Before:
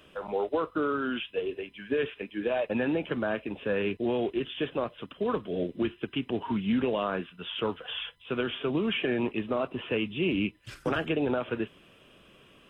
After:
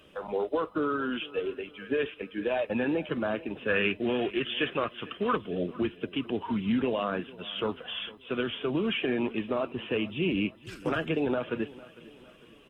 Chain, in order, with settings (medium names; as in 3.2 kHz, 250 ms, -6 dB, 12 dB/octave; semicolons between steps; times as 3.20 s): coarse spectral quantiser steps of 15 dB; 3.68–5.37 s: high-order bell 1.9 kHz +9 dB; feedback delay 453 ms, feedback 47%, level -20 dB